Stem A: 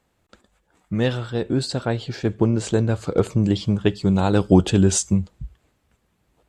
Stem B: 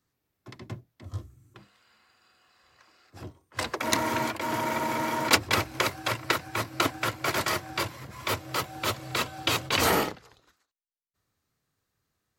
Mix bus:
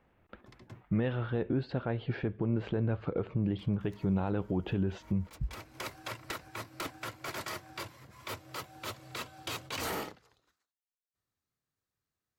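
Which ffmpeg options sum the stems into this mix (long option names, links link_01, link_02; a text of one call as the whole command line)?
ffmpeg -i stem1.wav -i stem2.wav -filter_complex "[0:a]lowpass=frequency=2700:width=0.5412,lowpass=frequency=2700:width=1.3066,alimiter=limit=-11.5dB:level=0:latency=1:release=212,volume=0.5dB,asplit=2[link_01][link_02];[1:a]aeval=exprs='0.133*(abs(mod(val(0)/0.133+3,4)-2)-1)':channel_layout=same,volume=-11.5dB[link_03];[link_02]apad=whole_len=546082[link_04];[link_03][link_04]sidechaincompress=threshold=-43dB:ratio=3:attack=44:release=390[link_05];[link_01][link_05]amix=inputs=2:normalize=0,alimiter=limit=-21.5dB:level=0:latency=1:release=395" out.wav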